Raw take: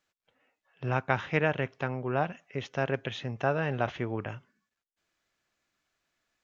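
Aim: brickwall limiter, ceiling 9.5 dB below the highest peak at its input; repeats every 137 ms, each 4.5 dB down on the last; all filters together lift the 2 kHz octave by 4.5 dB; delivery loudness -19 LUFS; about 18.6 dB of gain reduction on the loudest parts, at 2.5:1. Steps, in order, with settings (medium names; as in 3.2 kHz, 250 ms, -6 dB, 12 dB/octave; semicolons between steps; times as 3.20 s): peaking EQ 2 kHz +6 dB; compression 2.5:1, threshold -48 dBFS; peak limiter -32.5 dBFS; feedback delay 137 ms, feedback 60%, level -4.5 dB; trim +27 dB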